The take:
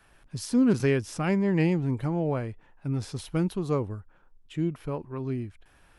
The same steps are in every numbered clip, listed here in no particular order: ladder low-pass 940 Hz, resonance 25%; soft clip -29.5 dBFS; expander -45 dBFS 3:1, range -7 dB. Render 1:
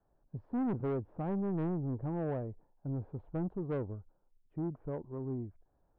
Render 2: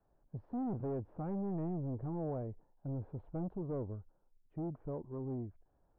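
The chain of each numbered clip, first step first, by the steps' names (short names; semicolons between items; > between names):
expander > ladder low-pass > soft clip; soft clip > expander > ladder low-pass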